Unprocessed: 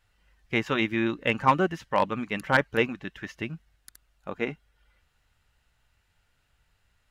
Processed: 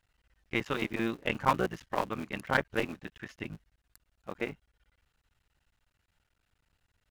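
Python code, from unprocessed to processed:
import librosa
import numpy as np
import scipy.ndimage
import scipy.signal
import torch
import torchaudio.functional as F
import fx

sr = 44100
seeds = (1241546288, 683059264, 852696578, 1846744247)

y = fx.cycle_switch(x, sr, every=3, mode='muted')
y = y * librosa.db_to_amplitude(-4.5)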